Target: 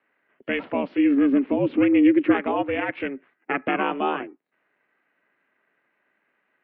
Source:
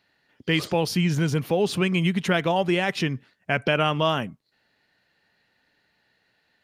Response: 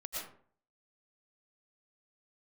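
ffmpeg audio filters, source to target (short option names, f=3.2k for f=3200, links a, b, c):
-filter_complex "[0:a]asplit=3[a][b][c];[a]afade=t=out:st=0.97:d=0.02[d];[b]asubboost=boost=9.5:cutoff=240,afade=t=in:st=0.97:d=0.02,afade=t=out:st=2.33:d=0.02[e];[c]afade=t=in:st=2.33:d=0.02[f];[d][e][f]amix=inputs=3:normalize=0,aeval=exprs='val(0)*sin(2*PI*200*n/s)':c=same,highpass=f=240:t=q:w=0.5412,highpass=f=240:t=q:w=1.307,lowpass=f=2.6k:t=q:w=0.5176,lowpass=f=2.6k:t=q:w=0.7071,lowpass=f=2.6k:t=q:w=1.932,afreqshift=-62,volume=2dB"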